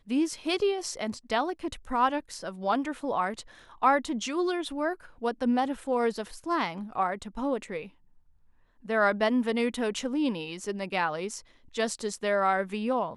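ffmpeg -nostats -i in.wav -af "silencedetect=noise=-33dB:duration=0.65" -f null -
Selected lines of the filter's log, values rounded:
silence_start: 7.84
silence_end: 8.89 | silence_duration: 1.06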